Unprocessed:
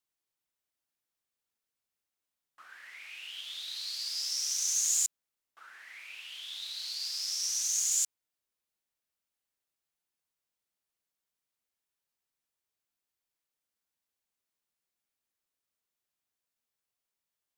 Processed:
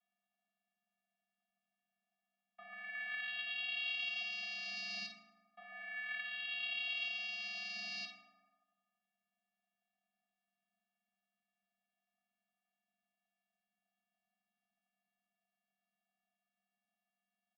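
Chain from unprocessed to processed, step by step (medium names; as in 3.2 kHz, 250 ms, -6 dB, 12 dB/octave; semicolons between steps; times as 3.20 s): resonant low shelf 610 Hz -11 dB, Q 3; static phaser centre 350 Hz, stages 6; saturation -18 dBFS, distortion -26 dB; vocoder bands 8, square 257 Hz; doubling 15 ms -11.5 dB; on a send: early reflections 51 ms -9.5 dB, 72 ms -15 dB; on the sum: FDN reverb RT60 1.6 s, low-frequency decay 0.75×, high-frequency decay 0.4×, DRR 4 dB; mistuned SSB -61 Hz 230–3400 Hz; trim +4 dB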